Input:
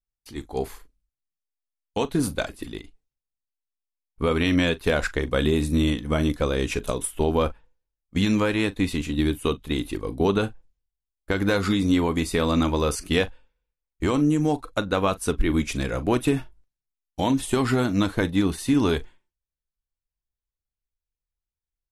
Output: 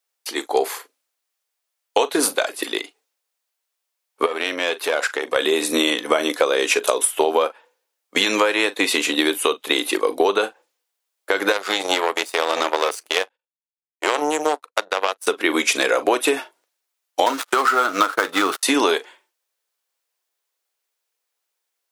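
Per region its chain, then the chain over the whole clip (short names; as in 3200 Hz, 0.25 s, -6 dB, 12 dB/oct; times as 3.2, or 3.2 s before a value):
4.26–5.36 compressor 2.5:1, threshold -33 dBFS + tube stage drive 23 dB, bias 0.6
11.52–15.27 power-law curve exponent 2 + notch 260 Hz, Q 6.2
17.26–18.63 switching dead time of 0.12 ms + bell 1300 Hz +14.5 dB 0.39 oct + gate -36 dBFS, range -33 dB
whole clip: HPF 430 Hz 24 dB/oct; compressor 10:1, threshold -31 dBFS; maximiser +18 dB; gain -1 dB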